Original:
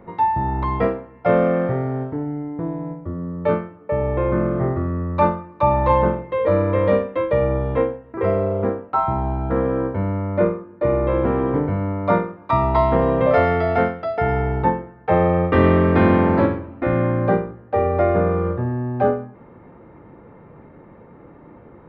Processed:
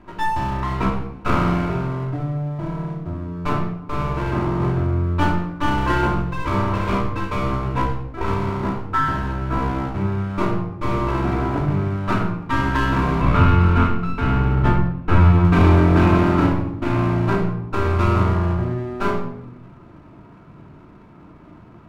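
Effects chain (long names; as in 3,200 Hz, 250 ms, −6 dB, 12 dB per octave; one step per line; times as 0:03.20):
lower of the sound and its delayed copy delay 0.77 ms
0:13.21–0:15.45: bass and treble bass +6 dB, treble −9 dB
rectangular room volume 2,300 cubic metres, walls furnished, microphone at 2.9 metres
level −3 dB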